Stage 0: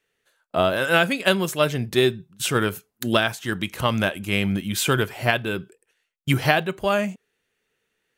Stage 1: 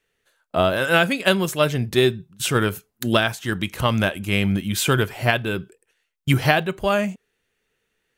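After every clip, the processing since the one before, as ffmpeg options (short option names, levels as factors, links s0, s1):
-af "lowshelf=f=66:g=11,volume=1.12"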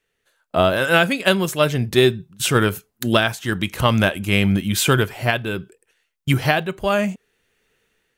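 -af "dynaudnorm=f=170:g=5:m=2.51,volume=0.891"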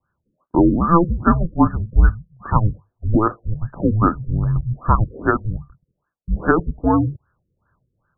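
-af "highpass=f=210:t=q:w=0.5412,highpass=f=210:t=q:w=1.307,lowpass=f=3300:t=q:w=0.5176,lowpass=f=3300:t=q:w=0.7071,lowpass=f=3300:t=q:w=1.932,afreqshift=-330,afftfilt=real='re*lt(b*sr/1024,510*pow(1800/510,0.5+0.5*sin(2*PI*2.5*pts/sr)))':imag='im*lt(b*sr/1024,510*pow(1800/510,0.5+0.5*sin(2*PI*2.5*pts/sr)))':win_size=1024:overlap=0.75,volume=1.58"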